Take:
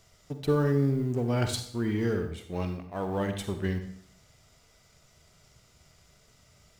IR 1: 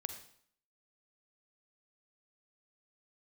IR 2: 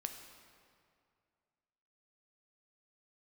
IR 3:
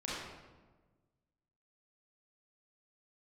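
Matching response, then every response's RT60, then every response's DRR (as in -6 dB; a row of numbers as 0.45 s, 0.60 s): 1; 0.60 s, 2.3 s, 1.3 s; 7.0 dB, 5.0 dB, -7.5 dB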